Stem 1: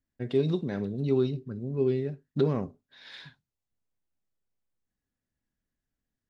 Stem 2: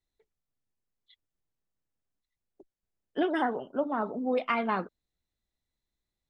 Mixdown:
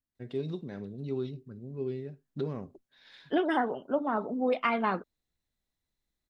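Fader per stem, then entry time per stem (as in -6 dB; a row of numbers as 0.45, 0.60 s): -8.5, +0.5 dB; 0.00, 0.15 s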